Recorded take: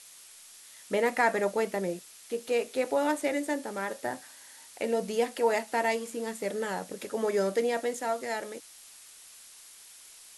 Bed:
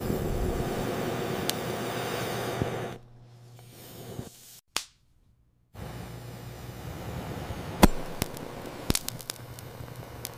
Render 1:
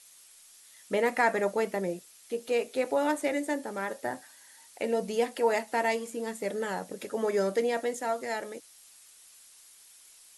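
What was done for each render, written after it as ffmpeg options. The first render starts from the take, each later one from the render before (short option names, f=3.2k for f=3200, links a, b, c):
-af "afftdn=nr=6:nf=-52"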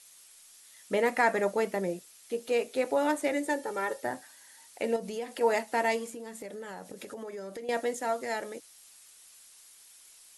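-filter_complex "[0:a]asettb=1/sr,asplit=3[a][b][c];[a]atrim=end=3.454[d];[b]atrim=start=3.45:end=4.03,asetpts=PTS-STARTPTS,afade=t=in:d=0.004:c=qsin,afade=t=out:st=0.576:d=0.004:c=qsin,aecho=1:1:2.2:0.65,atrim=end_sample=25578[e];[c]atrim=start=4.026[f];[d][e]acrossfade=d=0.004:c1=hsin:c2=qsin[g];[g][f]acrossfade=d=0.004:c1=qsin:c2=hsin,asettb=1/sr,asplit=3[h][i][j];[h]atrim=end=4.964[k];[i]atrim=start=4.96:end=5.41,asetpts=PTS-STARTPTS,afade=t=in:d=0.004:c=qsin,afade=t=out:st=0.446:d=0.004:c=qsin,acompressor=threshold=-34dB:ratio=3:attack=3.2:release=140:knee=1:detection=peak[l];[j]atrim=start=5.406[m];[k][l]acrossfade=d=0.004:c1=hsin:c2=qsin[n];[n][m]acrossfade=d=0.004:c1=qsin:c2=hsin,asettb=1/sr,asplit=3[o][p][q];[o]atrim=end=6.094[r];[p]atrim=start=6.09:end=7.69,asetpts=PTS-STARTPTS,afade=t=in:d=0.004:c=qsin,afade=t=out:st=1.596:d=0.004:c=qsin,acompressor=threshold=-38dB:ratio=6:attack=3.2:release=140:knee=1:detection=peak[s];[q]atrim=start=7.686[t];[r][s]acrossfade=d=0.004:c1=hsin:c2=qsin[u];[u][t]acrossfade=d=0.004:c1=qsin:c2=hsin"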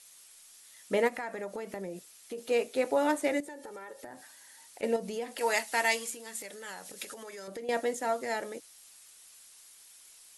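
-filter_complex "[0:a]asplit=3[a][b][c];[a]afade=t=out:st=1.07:d=0.02[d];[b]acompressor=threshold=-35dB:ratio=5:attack=3.2:release=140:knee=1:detection=peak,afade=t=in:st=1.07:d=0.02,afade=t=out:st=2.37:d=0.02[e];[c]afade=t=in:st=2.37:d=0.02[f];[d][e][f]amix=inputs=3:normalize=0,asettb=1/sr,asplit=3[g][h][i];[g]atrim=end=3.404[j];[h]atrim=start=3.4:end=4.83,asetpts=PTS-STARTPTS,afade=t=in:d=0.004:c=qsin,afade=t=out:st=1.426:d=0.004:c=qsin,acompressor=threshold=-41dB:ratio=8:attack=3.2:release=140:knee=1:detection=peak[k];[i]atrim=start=4.826[l];[j][k]acrossfade=d=0.004:c1=hsin:c2=qsin[m];[m][l]acrossfade=d=0.004:c1=qsin:c2=hsin,asettb=1/sr,asplit=3[n][o][p];[n]atrim=end=5.384[q];[o]atrim=start=5.38:end=7.48,asetpts=PTS-STARTPTS,afade=t=in:d=0.004:c=qsin,afade=t=out:st=2.096:d=0.004:c=qsin,tiltshelf=f=1.1k:g=-8.5[r];[p]atrim=start=7.476[s];[q][r]acrossfade=d=0.004:c1=hsin:c2=qsin[t];[t][s]acrossfade=d=0.004:c1=qsin:c2=hsin"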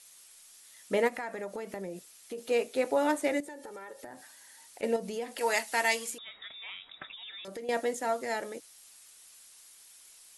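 -filter_complex "[0:a]asettb=1/sr,asplit=3[a][b][c];[a]atrim=end=6.184[d];[b]atrim=start=6.18:end=7.45,asetpts=PTS-STARTPTS,afade=t=in:d=0.004:c=qsin,afade=t=out:st=1.266:d=0.004:c=qsin,lowpass=f=3.4k:t=q:w=0.5098,lowpass=f=3.4k:t=q:w=0.6013,lowpass=f=3.4k:t=q:w=0.9,lowpass=f=3.4k:t=q:w=2.563,afreqshift=-4000[e];[c]atrim=start=7.446[f];[d][e]acrossfade=d=0.004:c1=hsin:c2=qsin[g];[g][f]acrossfade=d=0.004:c1=qsin:c2=hsin"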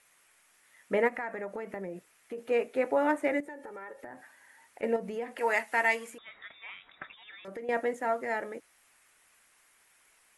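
-af "highshelf=f=2.9k:t=q:w=1.5:g=-11.5"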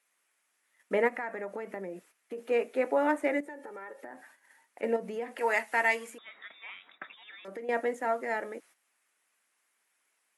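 -af "agate=range=-11dB:threshold=-57dB:ratio=16:detection=peak,highpass=f=190:w=0.5412,highpass=f=190:w=1.3066"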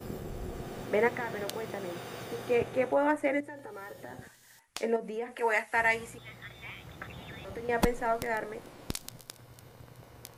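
-filter_complex "[1:a]volume=-10dB[a];[0:a][a]amix=inputs=2:normalize=0"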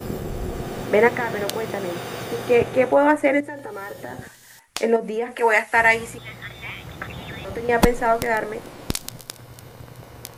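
-af "volume=10.5dB"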